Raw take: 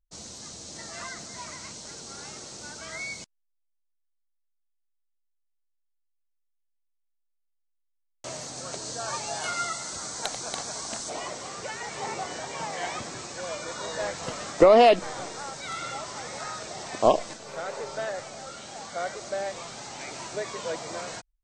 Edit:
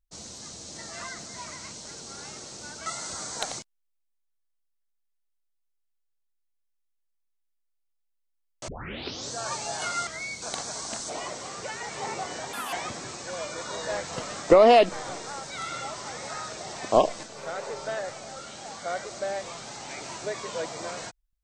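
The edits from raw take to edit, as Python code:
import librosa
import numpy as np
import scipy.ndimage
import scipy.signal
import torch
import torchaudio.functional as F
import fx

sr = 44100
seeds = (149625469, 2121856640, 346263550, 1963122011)

y = fx.edit(x, sr, fx.swap(start_s=2.86, length_s=0.35, other_s=9.69, other_length_s=0.73),
    fx.tape_start(start_s=8.3, length_s=0.64),
    fx.speed_span(start_s=12.53, length_s=0.3, speed=1.52), tone=tone)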